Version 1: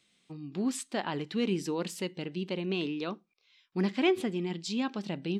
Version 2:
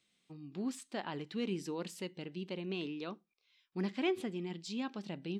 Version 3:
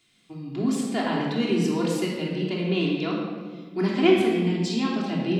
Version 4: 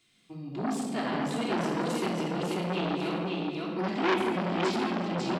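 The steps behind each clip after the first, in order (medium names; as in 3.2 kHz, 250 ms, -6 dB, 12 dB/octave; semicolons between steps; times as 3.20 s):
de-esser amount 80%; trim -7 dB
simulated room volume 1600 m³, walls mixed, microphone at 3.2 m; trim +8.5 dB
on a send: feedback delay 543 ms, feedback 25%, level -3.5 dB; on the sum: transformer saturation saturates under 2 kHz; trim -3 dB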